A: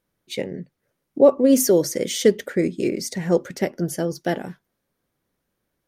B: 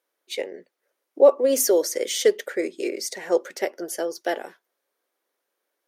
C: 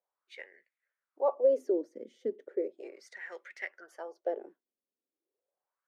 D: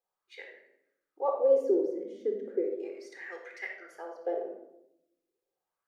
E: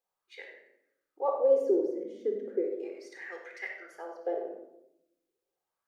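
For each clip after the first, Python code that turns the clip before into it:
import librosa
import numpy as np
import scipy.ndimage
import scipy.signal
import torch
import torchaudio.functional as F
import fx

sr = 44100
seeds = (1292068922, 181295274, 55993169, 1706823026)

y1 = scipy.signal.sosfilt(scipy.signal.butter(4, 390.0, 'highpass', fs=sr, output='sos'), x)
y2 = fx.wah_lfo(y1, sr, hz=0.36, low_hz=220.0, high_hz=2100.0, q=4.1)
y2 = F.gain(torch.from_numpy(y2), -2.0).numpy()
y3 = fx.room_shoebox(y2, sr, seeds[0], volume_m3=2300.0, walls='furnished', distance_m=3.9)
y3 = F.gain(torch.from_numpy(y3), -2.0).numpy()
y4 = y3 + 10.0 ** (-13.5 / 20.0) * np.pad(y3, (int(97 * sr / 1000.0), 0))[:len(y3)]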